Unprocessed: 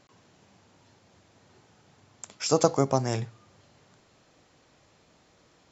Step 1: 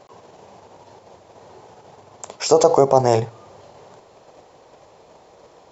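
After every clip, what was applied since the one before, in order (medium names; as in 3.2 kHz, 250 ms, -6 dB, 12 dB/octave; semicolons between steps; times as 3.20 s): high-order bell 630 Hz +11.5 dB; in parallel at +1 dB: level held to a coarse grid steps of 9 dB; on the sum: loudness maximiser +3 dB; trim -1 dB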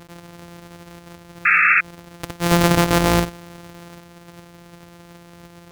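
sorted samples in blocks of 256 samples; painted sound noise, 1.45–1.81 s, 1.2–2.7 kHz -15 dBFS; peak limiter -10.5 dBFS, peak gain reduction 8.5 dB; trim +5 dB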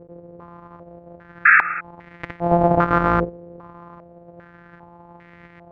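step-sequenced low-pass 2.5 Hz 490–2000 Hz; trim -4 dB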